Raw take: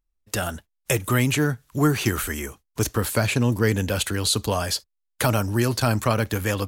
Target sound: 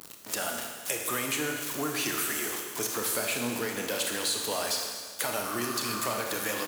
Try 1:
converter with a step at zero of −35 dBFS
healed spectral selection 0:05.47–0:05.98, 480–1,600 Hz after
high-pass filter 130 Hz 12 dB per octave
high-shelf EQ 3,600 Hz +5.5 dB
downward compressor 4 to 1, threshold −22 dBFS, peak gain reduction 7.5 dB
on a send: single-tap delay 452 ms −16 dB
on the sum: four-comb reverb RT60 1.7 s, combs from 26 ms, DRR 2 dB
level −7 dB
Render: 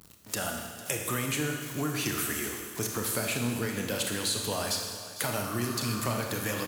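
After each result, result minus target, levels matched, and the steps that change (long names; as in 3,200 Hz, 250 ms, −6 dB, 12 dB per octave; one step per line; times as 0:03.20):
echo 203 ms late; 125 Hz band +11.5 dB; converter with a step at zero: distortion −8 dB
change: single-tap delay 249 ms −16 dB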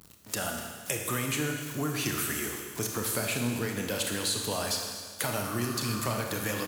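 125 Hz band +11.5 dB; converter with a step at zero: distortion −8 dB
change: high-pass filter 320 Hz 12 dB per octave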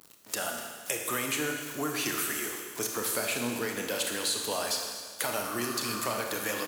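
converter with a step at zero: distortion −8 dB
change: converter with a step at zero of −26 dBFS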